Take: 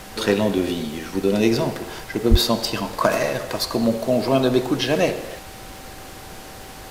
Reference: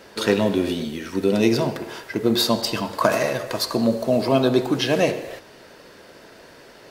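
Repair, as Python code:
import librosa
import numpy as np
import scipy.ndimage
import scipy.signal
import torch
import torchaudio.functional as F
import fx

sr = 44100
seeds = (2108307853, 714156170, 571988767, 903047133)

y = fx.fix_declick_ar(x, sr, threshold=6.5)
y = fx.notch(y, sr, hz=770.0, q=30.0)
y = fx.highpass(y, sr, hz=140.0, slope=24, at=(2.3, 2.42), fade=0.02)
y = fx.noise_reduce(y, sr, print_start_s=6.39, print_end_s=6.89, reduce_db=8.0)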